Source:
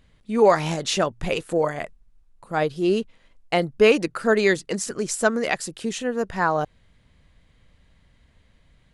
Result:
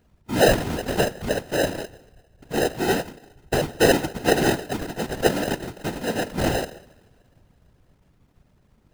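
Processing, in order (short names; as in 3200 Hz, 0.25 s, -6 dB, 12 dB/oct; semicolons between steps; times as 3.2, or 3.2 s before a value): two-slope reverb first 0.83 s, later 3.3 s, from -24 dB, DRR 11.5 dB; sample-and-hold 39×; whisperiser; gain -1 dB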